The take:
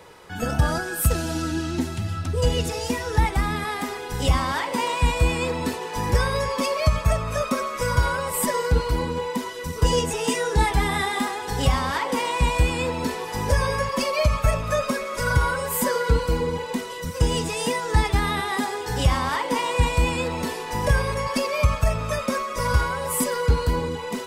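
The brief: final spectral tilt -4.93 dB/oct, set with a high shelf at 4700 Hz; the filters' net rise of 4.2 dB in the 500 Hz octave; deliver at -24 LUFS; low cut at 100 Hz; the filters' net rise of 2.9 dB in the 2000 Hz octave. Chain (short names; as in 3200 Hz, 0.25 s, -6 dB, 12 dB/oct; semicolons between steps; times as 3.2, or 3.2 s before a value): HPF 100 Hz; bell 500 Hz +4.5 dB; bell 2000 Hz +4.5 dB; high shelf 4700 Hz -6 dB; gain -1 dB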